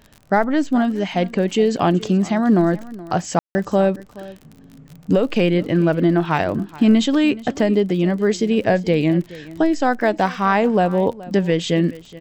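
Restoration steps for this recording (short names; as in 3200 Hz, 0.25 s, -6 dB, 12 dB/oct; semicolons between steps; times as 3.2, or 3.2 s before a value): de-click; room tone fill 3.39–3.55; inverse comb 0.424 s -19 dB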